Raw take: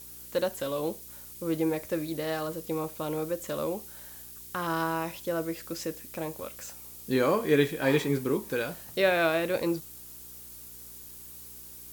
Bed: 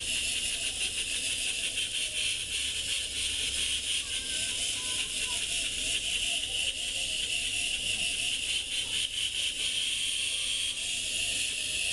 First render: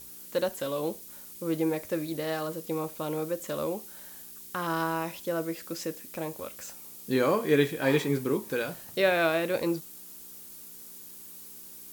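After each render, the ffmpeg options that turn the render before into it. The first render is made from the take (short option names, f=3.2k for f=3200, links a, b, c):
-af "bandreject=f=60:t=h:w=4,bandreject=f=120:t=h:w=4"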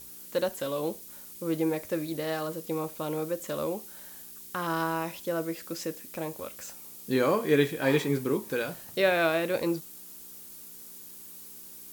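-af anull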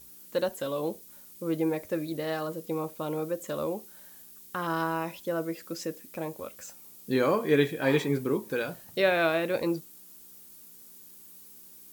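-af "afftdn=nr=6:nf=-46"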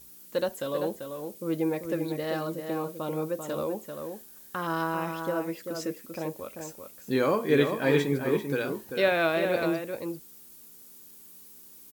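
-filter_complex "[0:a]asplit=2[a][b];[b]adelay=390.7,volume=-6dB,highshelf=f=4k:g=-8.79[c];[a][c]amix=inputs=2:normalize=0"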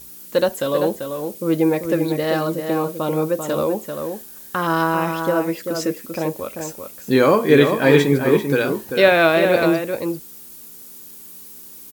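-af "volume=10.5dB,alimiter=limit=-2dB:level=0:latency=1"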